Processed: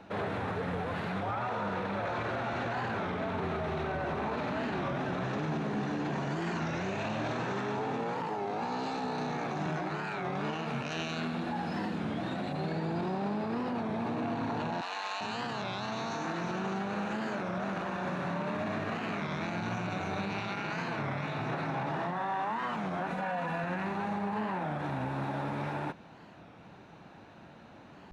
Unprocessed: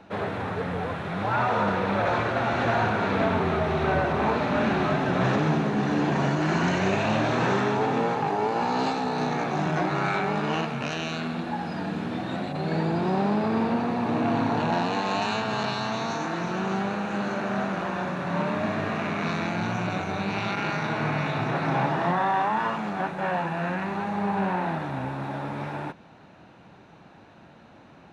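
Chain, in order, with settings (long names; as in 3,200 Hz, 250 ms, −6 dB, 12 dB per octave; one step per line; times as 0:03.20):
0:14.81–0:15.21: high-pass filter 990 Hz 12 dB per octave
0:23.10–0:23.64: comb filter 4.1 ms, depth 100%
brickwall limiter −24.5 dBFS, peak gain reduction 11.5 dB
wow of a warped record 33 1/3 rpm, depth 160 cents
level −1.5 dB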